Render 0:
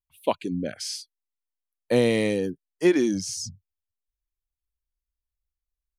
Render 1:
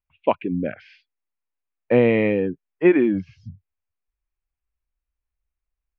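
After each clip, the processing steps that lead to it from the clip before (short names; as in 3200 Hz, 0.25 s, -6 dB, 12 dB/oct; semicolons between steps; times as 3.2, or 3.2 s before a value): elliptic low-pass 2600 Hz, stop band 80 dB; gain +5 dB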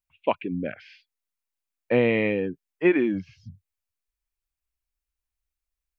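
high shelf 2300 Hz +9.5 dB; gain -5 dB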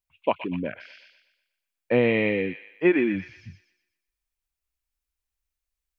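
thin delay 0.121 s, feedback 43%, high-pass 1700 Hz, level -4 dB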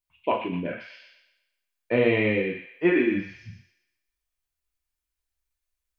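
non-linear reverb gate 0.15 s falling, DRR -0.5 dB; gain -2.5 dB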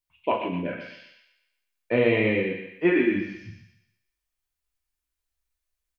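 feedback echo 0.135 s, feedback 26%, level -11.5 dB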